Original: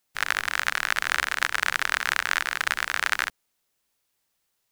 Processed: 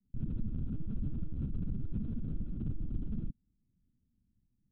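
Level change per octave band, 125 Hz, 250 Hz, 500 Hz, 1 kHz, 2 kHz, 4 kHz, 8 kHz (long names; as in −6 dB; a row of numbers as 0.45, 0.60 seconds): can't be measured, +12.0 dB, −14.5 dB, below −40 dB, below −40 dB, below −40 dB, below −40 dB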